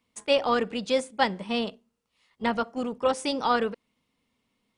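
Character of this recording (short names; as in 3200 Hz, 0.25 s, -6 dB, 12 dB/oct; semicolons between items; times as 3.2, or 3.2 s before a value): noise floor -78 dBFS; spectral tilt -2.0 dB/oct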